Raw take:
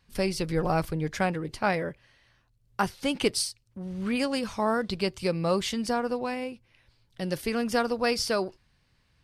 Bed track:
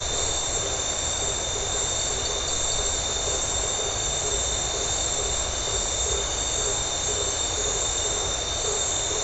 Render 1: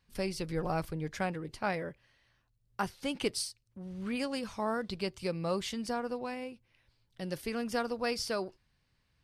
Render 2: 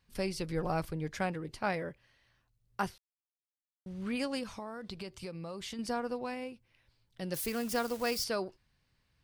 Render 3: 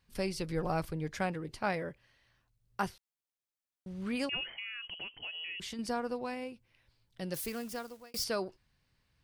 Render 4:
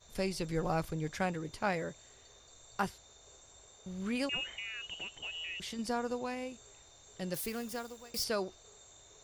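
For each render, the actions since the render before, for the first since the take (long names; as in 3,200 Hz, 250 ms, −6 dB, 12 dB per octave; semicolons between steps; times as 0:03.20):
level −7 dB
0:02.98–0:03.86: silence; 0:04.43–0:05.79: downward compressor, threshold −38 dBFS; 0:07.34–0:08.24: spike at every zero crossing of −34 dBFS
0:04.29–0:05.60: voice inversion scrambler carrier 3,100 Hz; 0:07.21–0:08.14: fade out
mix in bed track −32.5 dB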